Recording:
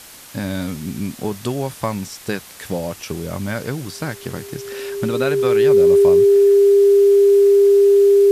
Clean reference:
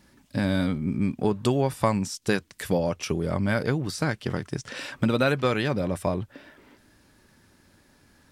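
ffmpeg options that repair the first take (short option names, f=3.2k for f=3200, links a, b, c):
-af "bandreject=f=400:w=30,afwtdn=0.011"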